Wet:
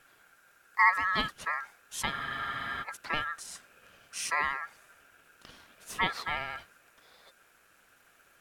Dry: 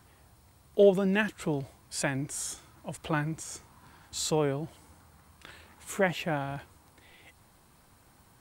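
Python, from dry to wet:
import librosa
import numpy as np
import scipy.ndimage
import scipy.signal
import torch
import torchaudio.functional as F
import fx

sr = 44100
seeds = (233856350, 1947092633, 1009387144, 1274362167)

y = x * np.sin(2.0 * np.pi * 1500.0 * np.arange(len(x)) / sr)
y = fx.vibrato(y, sr, rate_hz=14.0, depth_cents=37.0)
y = fx.spec_freeze(y, sr, seeds[0], at_s=2.14, hold_s=0.69)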